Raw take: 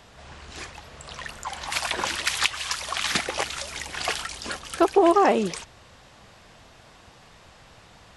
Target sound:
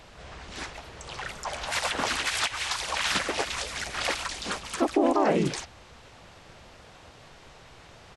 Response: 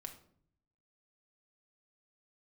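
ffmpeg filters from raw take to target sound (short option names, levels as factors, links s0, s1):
-filter_complex "[0:a]alimiter=limit=0.178:level=0:latency=1:release=75,asplit=3[s0][s1][s2];[s1]asetrate=33038,aresample=44100,atempo=1.33484,volume=0.891[s3];[s2]asetrate=37084,aresample=44100,atempo=1.18921,volume=0.794[s4];[s0][s3][s4]amix=inputs=3:normalize=0,volume=0.708"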